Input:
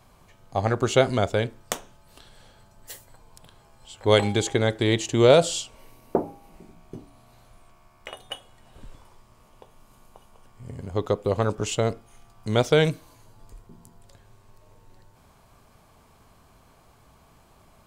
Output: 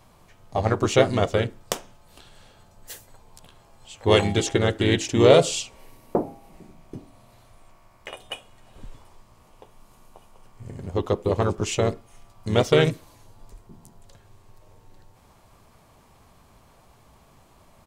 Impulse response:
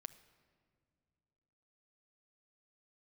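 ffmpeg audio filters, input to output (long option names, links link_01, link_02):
-filter_complex "[0:a]bandreject=frequency=1500:width=29,asplit=2[link_01][link_02];[link_02]asetrate=37084,aresample=44100,atempo=1.18921,volume=-5dB[link_03];[link_01][link_03]amix=inputs=2:normalize=0"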